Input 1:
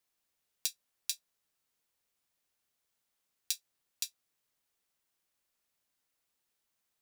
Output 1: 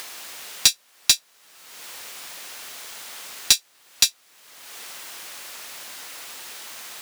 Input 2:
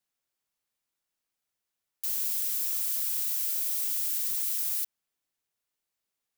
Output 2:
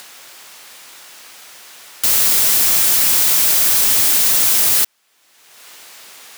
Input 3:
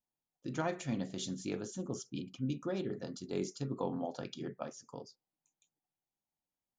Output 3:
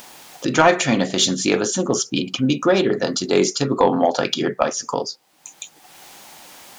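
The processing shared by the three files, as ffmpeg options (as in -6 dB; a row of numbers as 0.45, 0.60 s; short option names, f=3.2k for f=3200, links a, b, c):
-filter_complex "[0:a]asplit=2[a][b];[b]acompressor=mode=upward:threshold=-35dB:ratio=2.5,volume=2.5dB[c];[a][c]amix=inputs=2:normalize=0,asplit=2[d][e];[e]highpass=f=720:p=1,volume=22dB,asoftclip=type=tanh:threshold=-0.5dB[f];[d][f]amix=inputs=2:normalize=0,lowpass=f=5.7k:p=1,volume=-6dB,volume=3dB"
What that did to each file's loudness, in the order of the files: +19.5, +16.5, +20.5 LU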